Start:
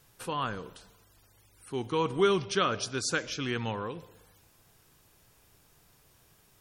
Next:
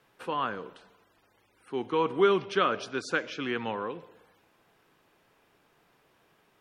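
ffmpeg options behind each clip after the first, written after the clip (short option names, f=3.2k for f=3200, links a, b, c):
-filter_complex "[0:a]acrossover=split=190 3300:gain=0.126 1 0.141[a][b][c];[a][b][c]amix=inputs=3:normalize=0,volume=2.5dB"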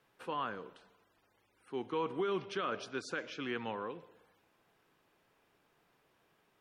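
-af "alimiter=limit=-19.5dB:level=0:latency=1:release=15,volume=-6.5dB"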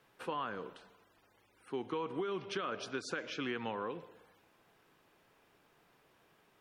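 -af "acompressor=threshold=-38dB:ratio=6,volume=4dB"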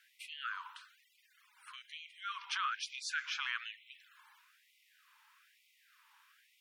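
-af "afftfilt=real='re*gte(b*sr/1024,810*pow(2000/810,0.5+0.5*sin(2*PI*1.1*pts/sr)))':imag='im*gte(b*sr/1024,810*pow(2000/810,0.5+0.5*sin(2*PI*1.1*pts/sr)))':win_size=1024:overlap=0.75,volume=5dB"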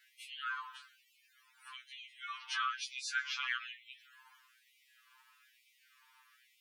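-af "afftfilt=real='re*2.45*eq(mod(b,6),0)':imag='im*2.45*eq(mod(b,6),0)':win_size=2048:overlap=0.75,volume=3dB"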